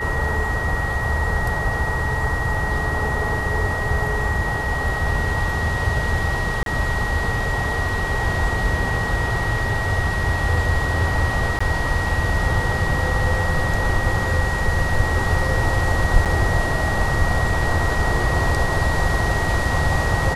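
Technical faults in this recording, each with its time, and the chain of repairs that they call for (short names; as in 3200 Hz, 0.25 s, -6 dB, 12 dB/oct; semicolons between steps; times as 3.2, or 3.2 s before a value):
tone 1900 Hz -25 dBFS
6.63–6.66 gap 32 ms
11.59–11.61 gap 15 ms
16.25–16.26 gap 7.2 ms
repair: notch 1900 Hz, Q 30; interpolate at 6.63, 32 ms; interpolate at 11.59, 15 ms; interpolate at 16.25, 7.2 ms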